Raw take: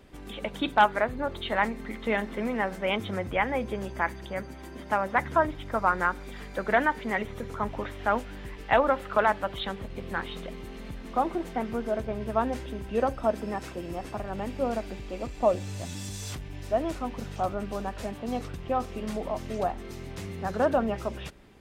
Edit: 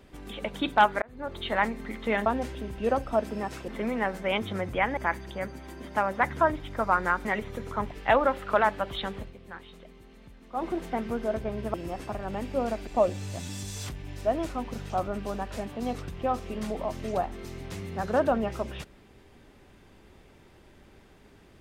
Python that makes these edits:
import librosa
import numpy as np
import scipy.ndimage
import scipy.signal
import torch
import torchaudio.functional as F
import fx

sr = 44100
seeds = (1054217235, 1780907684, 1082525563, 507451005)

y = fx.edit(x, sr, fx.fade_in_span(start_s=1.02, length_s=0.41),
    fx.cut(start_s=3.55, length_s=0.37),
    fx.cut(start_s=6.2, length_s=0.88),
    fx.cut(start_s=7.74, length_s=0.8),
    fx.fade_down_up(start_s=9.85, length_s=1.44, db=-11.5, fade_s=0.12),
    fx.move(start_s=12.37, length_s=1.42, to_s=2.26),
    fx.cut(start_s=14.92, length_s=0.41), tone=tone)